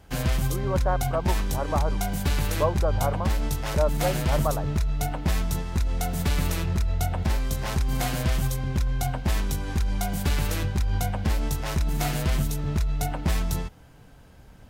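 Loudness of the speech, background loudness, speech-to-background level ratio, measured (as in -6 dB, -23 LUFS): -30.5 LUFS, -27.5 LUFS, -3.0 dB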